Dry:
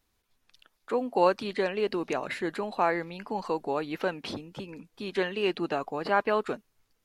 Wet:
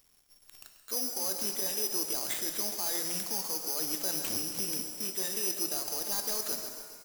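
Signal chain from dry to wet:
variable-slope delta modulation 16 kbit/s
bad sample-rate conversion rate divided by 8×, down none, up zero stuff
reversed playback
downward compressor 6 to 1, threshold −25 dBFS, peak gain reduction 17 dB
reversed playback
hum removal 84.39 Hz, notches 2
on a send: repeating echo 136 ms, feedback 52%, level −13 dB
on the sum: brickwall limiter −16 dBFS, peak gain reduction 7.5 dB
reverb with rising layers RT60 1.6 s, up +7 semitones, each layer −8 dB, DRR 6 dB

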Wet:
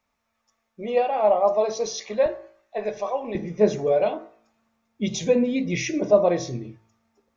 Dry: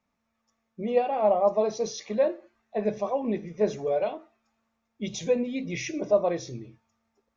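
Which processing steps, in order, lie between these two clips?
parametric band 180 Hz −9 dB 2 octaves, from 0:02.26 −15 dB, from 0:03.35 +2.5 dB
hum removal 55.32 Hz, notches 38
level +5.5 dB

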